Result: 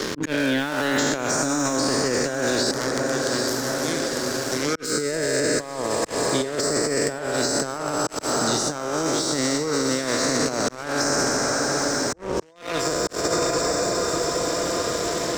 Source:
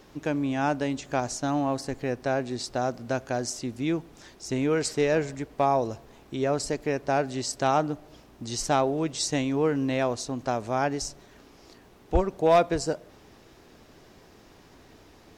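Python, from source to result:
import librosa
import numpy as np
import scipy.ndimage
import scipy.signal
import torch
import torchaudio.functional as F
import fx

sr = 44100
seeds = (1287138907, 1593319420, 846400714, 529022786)

y = fx.spec_trails(x, sr, decay_s=2.98)
y = fx.power_curve(y, sr, exponent=3.0, at=(2.71, 4.76))
y = fx.highpass(y, sr, hz=240.0, slope=6)
y = fx.spec_gate(y, sr, threshold_db=-30, keep='strong')
y = fx.peak_eq(y, sr, hz=2600.0, db=-13.0, octaves=0.29)
y = fx.echo_diffused(y, sr, ms=794, feedback_pct=52, wet_db=-11)
y = fx.over_compress(y, sr, threshold_db=-27.0, ratio=-0.5)
y = fx.auto_swell(y, sr, attack_ms=360.0)
y = fx.leveller(y, sr, passes=2)
y = fx.peak_eq(y, sr, hz=770.0, db=-11.5, octaves=0.64)
y = fx.band_squash(y, sr, depth_pct=100)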